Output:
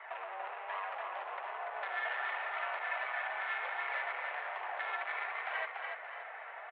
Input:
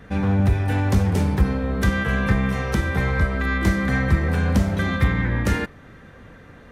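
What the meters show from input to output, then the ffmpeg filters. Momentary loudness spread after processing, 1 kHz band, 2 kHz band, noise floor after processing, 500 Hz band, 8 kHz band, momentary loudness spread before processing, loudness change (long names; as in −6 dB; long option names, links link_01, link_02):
7 LU, −6.5 dB, −10.0 dB, −47 dBFS, −16.0 dB, below −40 dB, 3 LU, −16.5 dB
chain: -filter_complex "[0:a]asoftclip=type=tanh:threshold=-25dB,acompressor=threshold=-35dB:ratio=6,flanger=delay=1:depth=4.3:regen=41:speed=1.3:shape=sinusoidal,adynamicsmooth=sensitivity=7:basefreq=1900,asplit=2[link_01][link_02];[link_02]asplit=5[link_03][link_04][link_05][link_06][link_07];[link_03]adelay=288,afreqshift=32,volume=-4.5dB[link_08];[link_04]adelay=576,afreqshift=64,volume=-12.5dB[link_09];[link_05]adelay=864,afreqshift=96,volume=-20.4dB[link_10];[link_06]adelay=1152,afreqshift=128,volume=-28.4dB[link_11];[link_07]adelay=1440,afreqshift=160,volume=-36.3dB[link_12];[link_08][link_09][link_10][link_11][link_12]amix=inputs=5:normalize=0[link_13];[link_01][link_13]amix=inputs=2:normalize=0,highpass=frequency=530:width_type=q:width=0.5412,highpass=frequency=530:width_type=q:width=1.307,lowpass=frequency=3100:width_type=q:width=0.5176,lowpass=frequency=3100:width_type=q:width=0.7071,lowpass=frequency=3100:width_type=q:width=1.932,afreqshift=180,volume=8.5dB"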